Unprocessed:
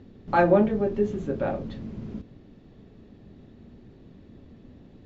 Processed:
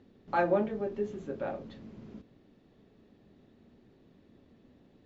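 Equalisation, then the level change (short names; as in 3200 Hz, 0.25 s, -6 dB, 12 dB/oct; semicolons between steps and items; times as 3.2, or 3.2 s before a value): low shelf 170 Hz -11.5 dB; -6.5 dB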